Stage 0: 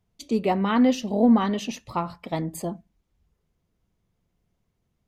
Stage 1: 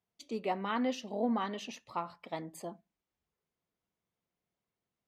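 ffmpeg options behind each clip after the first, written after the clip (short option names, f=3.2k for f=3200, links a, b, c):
-af "highpass=f=550:p=1,highshelf=f=6.9k:g=-9,volume=-7dB"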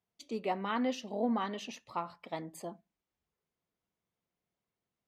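-af anull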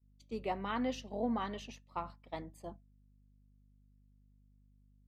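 -af "aeval=exprs='val(0)+0.00447*(sin(2*PI*50*n/s)+sin(2*PI*2*50*n/s)/2+sin(2*PI*3*50*n/s)/3+sin(2*PI*4*50*n/s)/4+sin(2*PI*5*50*n/s)/5)':c=same,agate=range=-33dB:threshold=-38dB:ratio=3:detection=peak,volume=-3dB"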